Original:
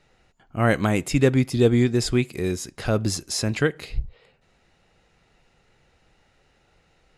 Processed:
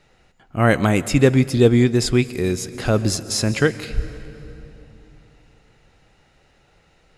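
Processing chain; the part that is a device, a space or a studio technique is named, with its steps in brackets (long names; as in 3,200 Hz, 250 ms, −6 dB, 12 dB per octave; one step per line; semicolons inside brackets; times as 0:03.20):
compressed reverb return (on a send at −10 dB: convolution reverb RT60 2.6 s, pre-delay 119 ms + downward compressor, threshold −25 dBFS, peak gain reduction 12 dB)
on the sum: level +4 dB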